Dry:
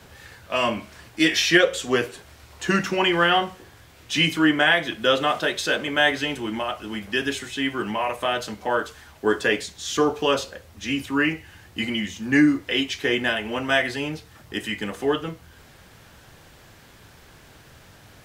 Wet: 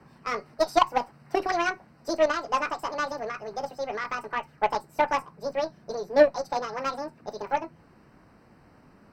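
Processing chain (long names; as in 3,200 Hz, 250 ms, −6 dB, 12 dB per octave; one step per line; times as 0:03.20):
wrong playback speed 7.5 ips tape played at 15 ips
moving average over 13 samples
harmonic generator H 3 −14 dB, 6 −32 dB, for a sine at −9 dBFS
level +4 dB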